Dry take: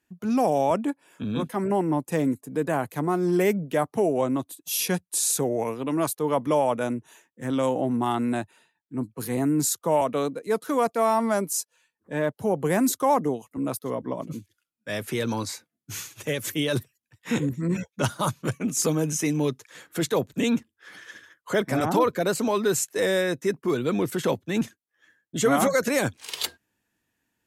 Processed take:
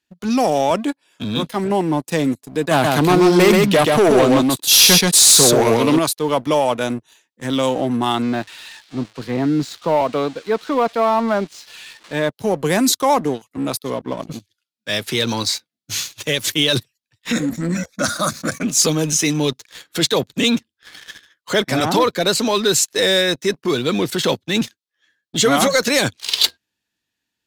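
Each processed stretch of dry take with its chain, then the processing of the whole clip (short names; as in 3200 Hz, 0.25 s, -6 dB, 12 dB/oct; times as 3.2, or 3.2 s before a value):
2.71–5.99 sample leveller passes 2 + echo 0.131 s -3 dB
8.22–12.13 switching spikes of -22.5 dBFS + LPF 2000 Hz
17.32–18.63 LPF 12000 Hz + fixed phaser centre 600 Hz, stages 8 + fast leveller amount 50%
whole clip: bell 4100 Hz +13.5 dB 1.3 oct; sample leveller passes 2; gain -2.5 dB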